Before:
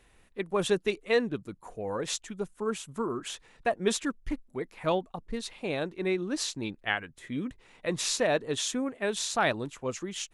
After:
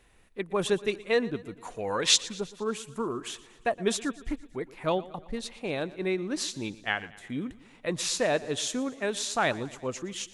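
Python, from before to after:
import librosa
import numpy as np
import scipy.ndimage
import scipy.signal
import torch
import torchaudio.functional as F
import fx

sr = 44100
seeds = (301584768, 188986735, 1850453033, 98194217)

y = fx.peak_eq(x, sr, hz=3600.0, db=14.5, octaves=2.9, at=(1.57, 2.2))
y = fx.echo_feedback(y, sr, ms=117, feedback_pct=56, wet_db=-19)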